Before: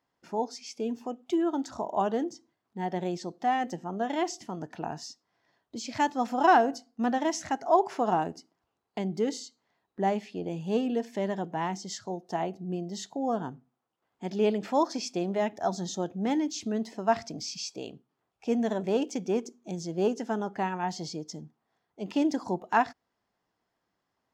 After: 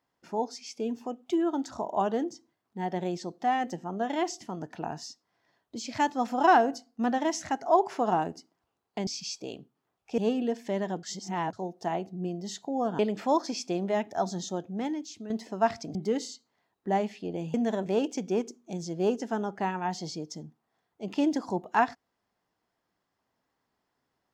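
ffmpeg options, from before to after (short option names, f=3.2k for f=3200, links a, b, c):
-filter_complex "[0:a]asplit=9[a][b][c][d][e][f][g][h][i];[a]atrim=end=9.072[j];[b]atrim=start=17.408:end=18.522[k];[c]atrim=start=10.658:end=11.512[l];[d]atrim=start=11.508:end=12.012,asetpts=PTS-STARTPTS,areverse[m];[e]atrim=start=12.008:end=13.472[n];[f]atrim=start=14.448:end=16.76,asetpts=PTS-STARTPTS,afade=t=out:st=1.322:d=0.99:silence=0.281838[o];[g]atrim=start=16.76:end=17.412,asetpts=PTS-STARTPTS,afade=t=in:d=0.004:c=hsin:silence=0.281838[p];[h]atrim=start=9.068:end=10.662[q];[i]atrim=start=18.518[r];[j][k]acrossfade=d=0.004:c1=hsin:c2=hsin[s];[s][l]acrossfade=d=0.004:c1=hsin:c2=hsin[t];[t][m]acrossfade=d=0.004:c1=hsin:c2=hsin[u];[u][n]acrossfade=d=0.004:c1=hsin:c2=hsin[v];[o][p]concat=n=2:v=0:a=1[w];[v][w]acrossfade=d=0.004:c1=hsin:c2=hsin[x];[x][q]acrossfade=d=0.004:c1=hsin:c2=hsin[y];[y][r]acrossfade=d=0.004:c1=hsin:c2=hsin"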